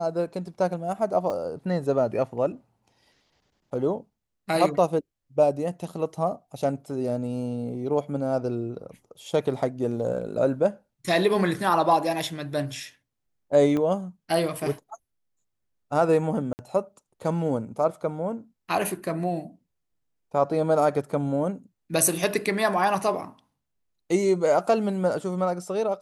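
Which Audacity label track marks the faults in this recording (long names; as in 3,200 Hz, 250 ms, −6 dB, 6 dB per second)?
1.300000	1.300000	drop-out 2.2 ms
13.770000	13.770000	click −17 dBFS
16.530000	16.590000	drop-out 59 ms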